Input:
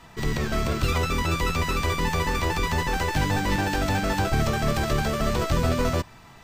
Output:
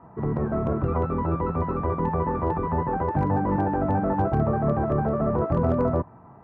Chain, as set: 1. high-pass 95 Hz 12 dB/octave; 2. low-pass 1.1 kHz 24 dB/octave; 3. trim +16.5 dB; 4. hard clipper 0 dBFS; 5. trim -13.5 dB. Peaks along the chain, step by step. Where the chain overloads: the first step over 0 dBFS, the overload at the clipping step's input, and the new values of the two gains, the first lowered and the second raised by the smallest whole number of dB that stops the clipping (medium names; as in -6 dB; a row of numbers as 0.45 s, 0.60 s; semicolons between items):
-10.5 dBFS, -12.5 dBFS, +4.0 dBFS, 0.0 dBFS, -13.5 dBFS; step 3, 4.0 dB; step 3 +12.5 dB, step 5 -9.5 dB